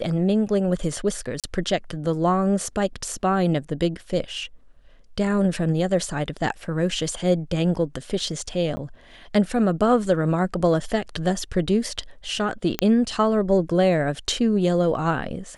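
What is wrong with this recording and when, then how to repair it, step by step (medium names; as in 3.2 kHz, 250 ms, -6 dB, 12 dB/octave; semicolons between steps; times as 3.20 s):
1.40–1.44 s: dropout 37 ms
8.76–8.77 s: dropout 10 ms
12.79 s: pop -6 dBFS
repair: de-click; interpolate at 1.40 s, 37 ms; interpolate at 8.76 s, 10 ms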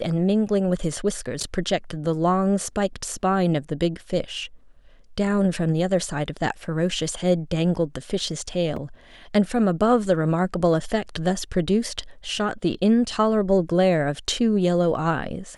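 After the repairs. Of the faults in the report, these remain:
nothing left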